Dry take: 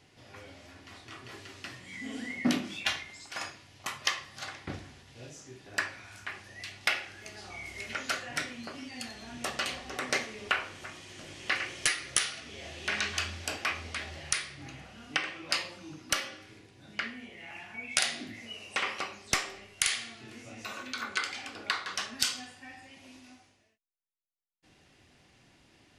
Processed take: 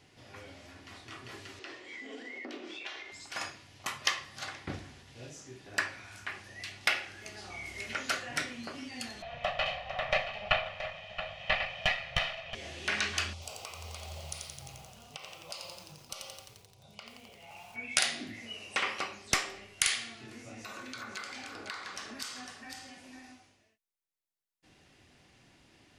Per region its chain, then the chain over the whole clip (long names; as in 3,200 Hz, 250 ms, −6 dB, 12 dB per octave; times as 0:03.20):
0:01.59–0:03.12: low-pass filter 5,300 Hz + downward compressor 4 to 1, threshold −40 dBFS + low shelf with overshoot 250 Hz −14 dB, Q 3
0:09.22–0:12.55: lower of the sound and its delayed copy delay 1.6 ms + drawn EQ curve 190 Hz 0 dB, 320 Hz −25 dB, 650 Hz +11 dB, 1,300 Hz −2 dB, 2,800 Hz +6 dB, 9,500 Hz −29 dB + single-tap delay 675 ms −11.5 dB
0:13.33–0:17.76: downward compressor 3 to 1, threshold −38 dBFS + phaser with its sweep stopped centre 710 Hz, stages 4 + feedback echo at a low word length 87 ms, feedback 80%, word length 9 bits, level −4.5 dB
0:20.26–0:23.32: parametric band 3,000 Hz −4 dB 0.65 octaves + downward compressor 2.5 to 1, threshold −41 dBFS + single-tap delay 503 ms −7 dB
whole clip: no processing